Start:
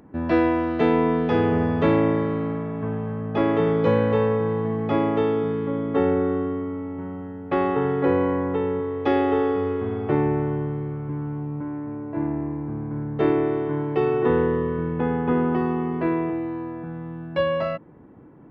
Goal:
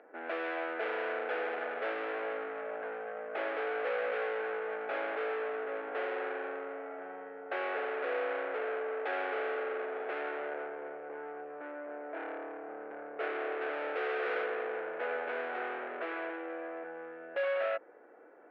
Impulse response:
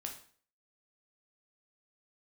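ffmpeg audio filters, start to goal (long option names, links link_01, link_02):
-filter_complex "[0:a]asettb=1/sr,asplit=3[link_01][link_02][link_03];[link_01]atrim=end=13.614[link_04];[link_02]atrim=start=13.61:end=14.44,asetpts=PTS-STARTPTS,afade=type=in:duration=0.004:curve=qsin,afade=type=out:start_time=0.826:duration=0.004:curve=qsin,acontrast=88[link_05];[link_03]atrim=start=14.436[link_06];[link_04][link_05]acrossfade=duration=0.004:curve1=hsin:curve2=qsin[link_07];[link_07][link_06]acrossfade=duration=0.004:curve1=qsin:curve2=hsin,aeval=exprs='(tanh(39.8*val(0)+0.45)-tanh(0.45))/39.8':channel_layout=same,highpass=frequency=460:width=0.5412,highpass=frequency=460:width=1.3066,equalizer=frequency=490:width_type=q:width=4:gain=4,equalizer=frequency=690:width_type=q:width=4:gain=5,equalizer=frequency=1000:width_type=q:width=4:gain=-9,equalizer=frequency=1500:width_type=q:width=4:gain=8,equalizer=frequency=2300:width_type=q:width=4:gain=3,lowpass=frequency=2800:width=0.5412,lowpass=frequency=2800:width=1.3066"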